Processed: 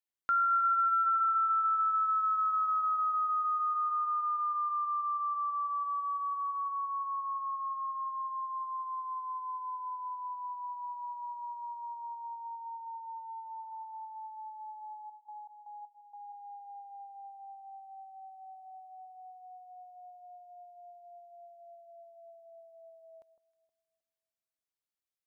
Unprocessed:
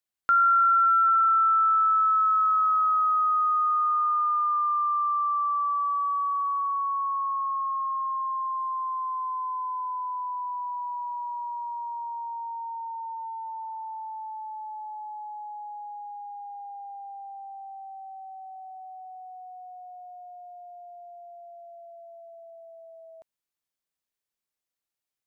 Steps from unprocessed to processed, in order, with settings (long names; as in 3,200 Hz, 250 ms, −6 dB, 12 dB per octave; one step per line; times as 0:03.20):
0:15.06–0:16.32: gate pattern "..xx..xx..xx." 159 BPM −12 dB
on a send: delay that swaps between a low-pass and a high-pass 157 ms, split 1,200 Hz, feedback 55%, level −12.5 dB
on the sum: level −7.5 dB